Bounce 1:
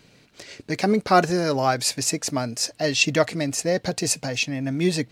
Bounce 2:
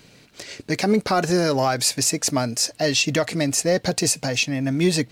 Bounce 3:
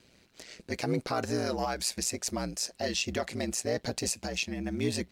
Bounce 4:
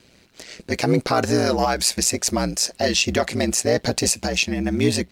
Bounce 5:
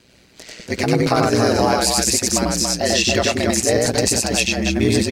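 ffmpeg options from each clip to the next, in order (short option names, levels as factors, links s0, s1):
-af "highshelf=f=6200:g=4.5,alimiter=limit=0.251:level=0:latency=1:release=108,acontrast=81,volume=0.668"
-af "aeval=exprs='val(0)*sin(2*PI*60*n/s)':c=same,volume=0.398"
-af "dynaudnorm=f=410:g=3:m=1.58,volume=2.37"
-af "aecho=1:1:93.29|282.8:0.891|0.631"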